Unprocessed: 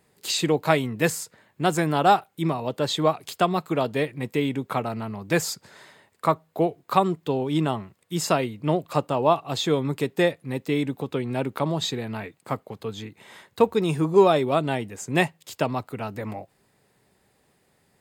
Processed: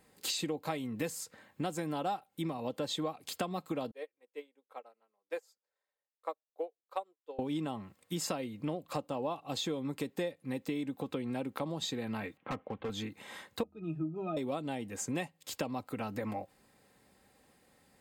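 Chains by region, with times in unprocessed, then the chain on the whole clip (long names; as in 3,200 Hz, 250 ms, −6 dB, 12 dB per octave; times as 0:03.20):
0:03.91–0:07.39: four-pole ladder high-pass 400 Hz, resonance 45% + expander for the loud parts 2.5 to 1, over −43 dBFS
0:12.37–0:12.90: Butterworth low-pass 3,200 Hz 48 dB per octave + hard clipping −28.5 dBFS
0:13.63–0:14.37: mains-hum notches 50/100/150/200/250 Hz + resonances in every octave D#, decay 0.11 s
whole clip: dynamic equaliser 1,500 Hz, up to −5 dB, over −36 dBFS, Q 1.1; comb filter 3.8 ms, depth 41%; downward compressor 5 to 1, threshold −32 dBFS; level −1.5 dB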